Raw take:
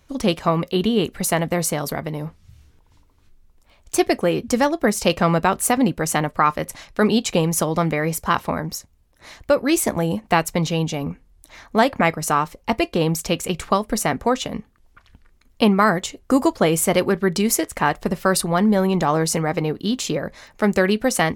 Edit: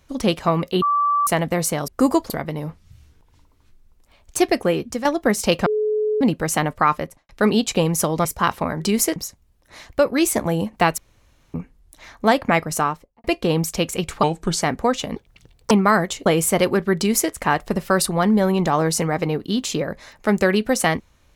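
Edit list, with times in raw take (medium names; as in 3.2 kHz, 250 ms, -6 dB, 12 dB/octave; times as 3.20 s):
0.82–1.27 s: bleep 1.16 kHz -15.5 dBFS
4.28–4.63 s: fade out, to -11 dB
5.24–5.79 s: bleep 427 Hz -17.5 dBFS
6.50–6.87 s: studio fade out
7.83–8.12 s: delete
10.49–11.05 s: room tone
12.24–12.75 s: studio fade out
13.74–14.04 s: speed 77%
14.58–15.64 s: speed 193%
16.19–16.61 s: move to 1.88 s
17.31–17.67 s: copy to 8.67 s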